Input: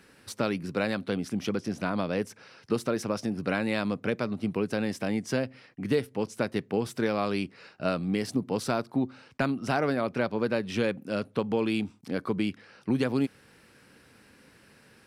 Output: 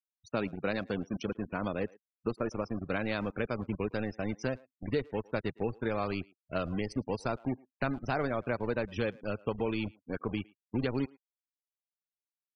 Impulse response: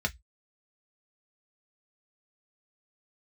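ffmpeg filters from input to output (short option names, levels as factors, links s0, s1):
-filter_complex "[0:a]asplit=2[s0][s1];[s1]acrusher=bits=4:mix=0:aa=0.000001,volume=0.668[s2];[s0][s2]amix=inputs=2:normalize=0,atempo=1.2,asubboost=boost=4.5:cutoff=81,afftfilt=real='re*gte(hypot(re,im),0.0282)':imag='im*gte(hypot(re,im),0.0282)':win_size=1024:overlap=0.75,asplit=2[s3][s4];[s4]adelay=110,highpass=300,lowpass=3400,asoftclip=type=hard:threshold=0.119,volume=0.0708[s5];[s3][s5]amix=inputs=2:normalize=0,volume=0.398"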